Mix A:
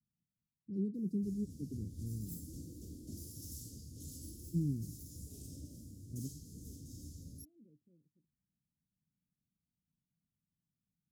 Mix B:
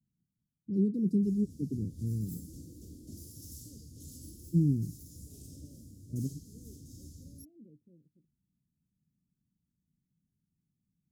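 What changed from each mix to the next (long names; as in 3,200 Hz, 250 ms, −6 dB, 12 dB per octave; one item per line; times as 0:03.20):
first voice +8.5 dB
second voice +8.0 dB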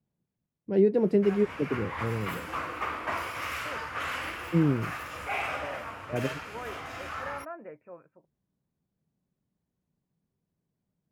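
background: add flat-topped bell 1,700 Hz +11 dB
master: remove inverse Chebyshev band-stop filter 900–1,900 Hz, stop band 80 dB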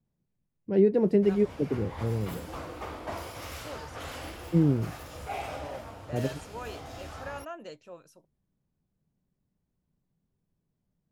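second voice: remove Butterworth low-pass 2,400 Hz 96 dB per octave
background: add flat-topped bell 1,700 Hz −11 dB
master: remove high-pass filter 110 Hz 6 dB per octave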